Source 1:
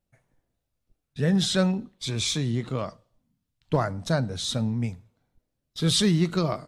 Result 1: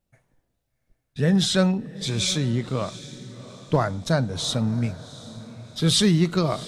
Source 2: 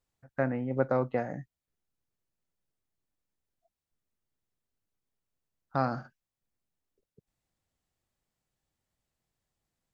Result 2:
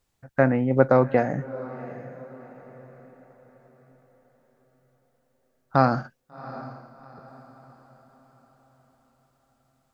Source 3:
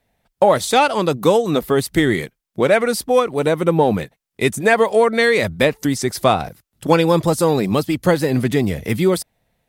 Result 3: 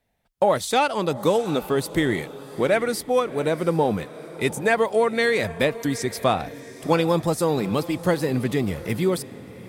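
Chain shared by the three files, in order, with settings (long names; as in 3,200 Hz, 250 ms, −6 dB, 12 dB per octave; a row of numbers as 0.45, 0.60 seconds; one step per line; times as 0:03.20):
feedback delay with all-pass diffusion 737 ms, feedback 41%, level −16 dB
loudness normalisation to −23 LKFS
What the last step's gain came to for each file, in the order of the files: +3.0, +9.5, −6.0 decibels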